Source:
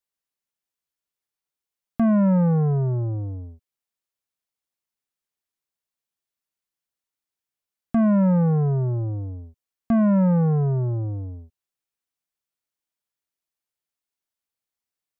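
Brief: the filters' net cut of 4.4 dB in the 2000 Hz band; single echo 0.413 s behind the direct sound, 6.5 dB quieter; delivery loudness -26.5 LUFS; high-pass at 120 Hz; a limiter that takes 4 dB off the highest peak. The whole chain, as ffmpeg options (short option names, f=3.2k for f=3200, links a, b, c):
-af "highpass=120,equalizer=f=2k:t=o:g=-6.5,alimiter=limit=-16.5dB:level=0:latency=1,aecho=1:1:413:0.473,volume=-2dB"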